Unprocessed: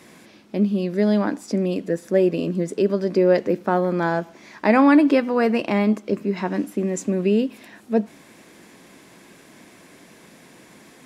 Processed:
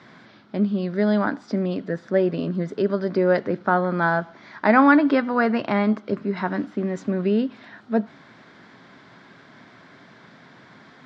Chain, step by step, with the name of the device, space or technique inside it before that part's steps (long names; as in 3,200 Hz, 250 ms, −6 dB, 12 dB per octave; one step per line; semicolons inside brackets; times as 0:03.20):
guitar cabinet (loudspeaker in its box 83–4,300 Hz, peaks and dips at 120 Hz +5 dB, 200 Hz −3 dB, 330 Hz −7 dB, 490 Hz −6 dB, 1,400 Hz +7 dB, 2,600 Hz −9 dB)
level +1.5 dB